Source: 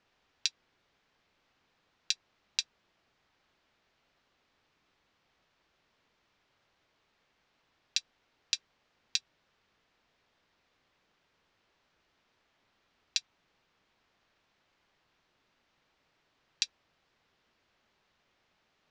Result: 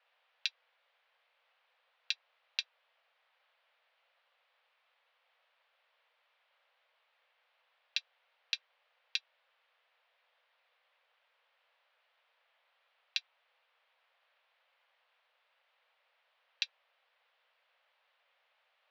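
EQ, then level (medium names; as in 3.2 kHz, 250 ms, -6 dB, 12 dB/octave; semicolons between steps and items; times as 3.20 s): steep high-pass 480 Hz 96 dB/octave; four-pole ladder low-pass 4.2 kHz, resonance 25%; +5.0 dB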